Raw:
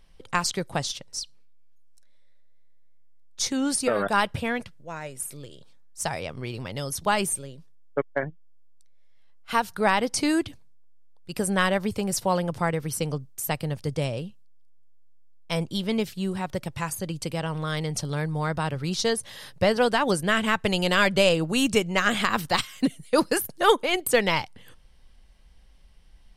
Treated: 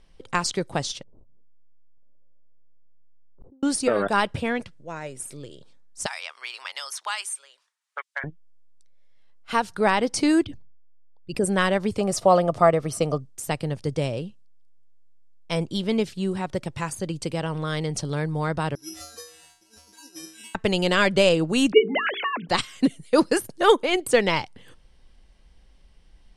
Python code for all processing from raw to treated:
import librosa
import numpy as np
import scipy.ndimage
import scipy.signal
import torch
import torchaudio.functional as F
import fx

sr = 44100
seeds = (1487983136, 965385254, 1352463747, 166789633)

y = fx.chain(x, sr, fx.gaussian_blur(sigma=12.0),
    fx.gate_flip(shuts_db=-36.0, range_db=-39),
    fx.sustainer(db_per_s=110.0), at=(1.03, 3.63))
y = fx.chain(y, sr, fx.highpass(hz=1000.0, slope=24),
    fx.band_squash(depth_pct=70), at=(6.06, 8.24))
y = fx.chain(y, sr, fx.envelope_sharpen(power=1.5),
    fx.sustainer(db_per_s=34.0), at=(10.44, 11.46))
y = fx.chain(y, sr, fx.peak_eq(hz=1500.0, db=-5.0, octaves=0.23),
    fx.small_body(hz=(660.0, 1200.0), ring_ms=25, db=14), at=(12.0, 13.2))
y = fx.chain(y, sr, fx.over_compress(threshold_db=-27.0, ratio=-0.5),
    fx.comb_fb(f0_hz=320.0, decay_s=0.52, harmonics='odd', damping=0.0, mix_pct=100),
    fx.resample_bad(factor=8, down='none', up='zero_stuff'), at=(18.75, 20.55))
y = fx.chain(y, sr, fx.sine_speech(),
    fx.hum_notches(base_hz=50, count=9), at=(21.72, 22.49))
y = scipy.signal.sosfilt(scipy.signal.butter(4, 9900.0, 'lowpass', fs=sr, output='sos'), y)
y = fx.peak_eq(y, sr, hz=350.0, db=4.5, octaves=1.2)